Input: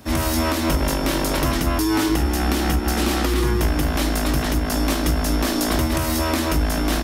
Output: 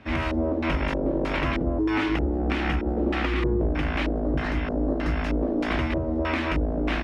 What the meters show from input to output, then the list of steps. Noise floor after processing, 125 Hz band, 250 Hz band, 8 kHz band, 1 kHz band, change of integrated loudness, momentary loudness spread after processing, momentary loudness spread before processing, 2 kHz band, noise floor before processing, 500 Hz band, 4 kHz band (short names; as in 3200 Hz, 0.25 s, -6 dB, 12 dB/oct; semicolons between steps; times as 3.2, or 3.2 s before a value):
-28 dBFS, -5.5 dB, -4.0 dB, under -25 dB, -6.0 dB, -5.0 dB, 2 LU, 1 LU, -2.5 dB, -23 dBFS, -2.5 dB, -10.5 dB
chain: spectral repair 4.16–5.1, 1900–3800 Hz; LFO low-pass square 1.6 Hz 510–2400 Hz; gain -5.5 dB